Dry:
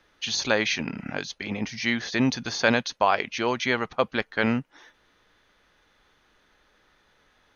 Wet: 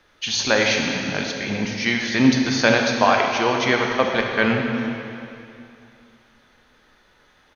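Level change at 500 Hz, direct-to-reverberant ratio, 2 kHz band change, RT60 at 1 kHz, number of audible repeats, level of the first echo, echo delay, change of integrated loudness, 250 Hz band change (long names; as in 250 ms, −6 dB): +6.5 dB, 1.0 dB, +6.0 dB, 2.7 s, 1, −16.5 dB, 437 ms, +6.0 dB, +7.0 dB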